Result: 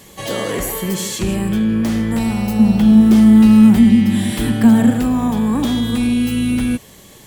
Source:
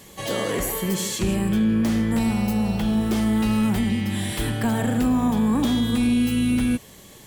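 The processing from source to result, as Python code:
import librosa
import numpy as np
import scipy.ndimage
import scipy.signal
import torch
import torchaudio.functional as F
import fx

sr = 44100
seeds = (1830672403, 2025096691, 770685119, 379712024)

y = fx.peak_eq(x, sr, hz=230.0, db=11.5, octaves=0.52, at=(2.59, 4.91))
y = y * librosa.db_to_amplitude(3.5)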